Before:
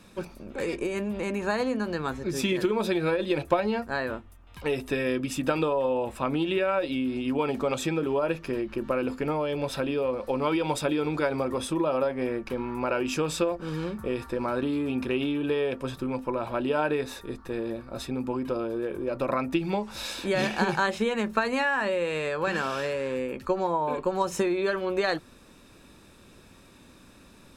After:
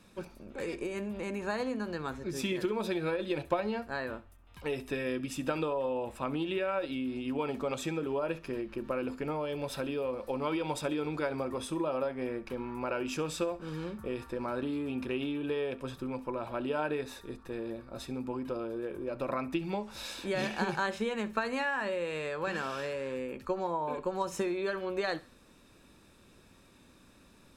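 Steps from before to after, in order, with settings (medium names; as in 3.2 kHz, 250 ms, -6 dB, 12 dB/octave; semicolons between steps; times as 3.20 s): 9.43–10.35 s: treble shelf 10 kHz +7.5 dB; thinning echo 67 ms, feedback 32%, level -18 dB; trim -6.5 dB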